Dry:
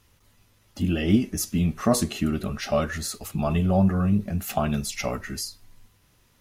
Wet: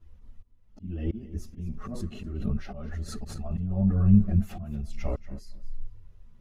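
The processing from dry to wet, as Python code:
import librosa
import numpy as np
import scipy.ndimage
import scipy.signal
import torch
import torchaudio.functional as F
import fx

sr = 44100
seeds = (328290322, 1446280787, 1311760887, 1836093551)

y = fx.block_float(x, sr, bits=7)
y = fx.tilt_eq(y, sr, slope=-4.0)
y = fx.auto_swell(y, sr, attack_ms=649.0)
y = fx.chorus_voices(y, sr, voices=4, hz=0.48, base_ms=12, depth_ms=3.1, mix_pct=70)
y = fx.echo_feedback(y, sr, ms=232, feedback_pct=18, wet_db=-17.0)
y = fx.pre_swell(y, sr, db_per_s=41.0, at=(1.57, 3.65), fade=0.02)
y = y * librosa.db_to_amplitude(-5.0)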